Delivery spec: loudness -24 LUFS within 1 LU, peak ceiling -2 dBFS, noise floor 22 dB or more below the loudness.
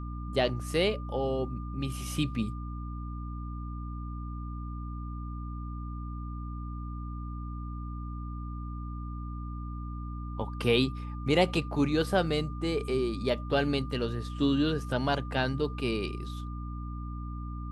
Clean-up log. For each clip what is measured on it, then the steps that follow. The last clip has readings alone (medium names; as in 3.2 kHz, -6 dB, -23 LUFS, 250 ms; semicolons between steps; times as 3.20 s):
hum 60 Hz; highest harmonic 300 Hz; hum level -35 dBFS; steady tone 1.2 kHz; tone level -46 dBFS; loudness -32.5 LUFS; peak level -11.0 dBFS; loudness target -24.0 LUFS
-> de-hum 60 Hz, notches 5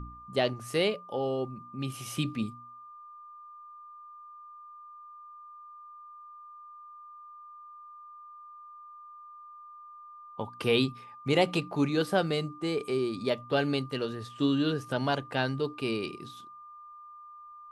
hum not found; steady tone 1.2 kHz; tone level -46 dBFS
-> band-stop 1.2 kHz, Q 30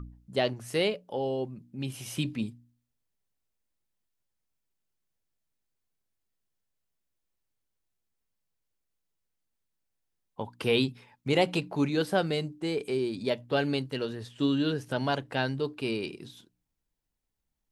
steady tone not found; loudness -30.5 LUFS; peak level -11.5 dBFS; loudness target -24.0 LUFS
-> trim +6.5 dB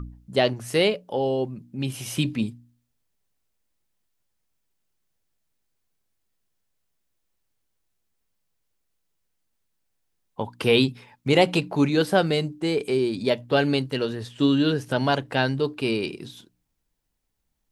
loudness -24.0 LUFS; peak level -5.0 dBFS; noise floor -76 dBFS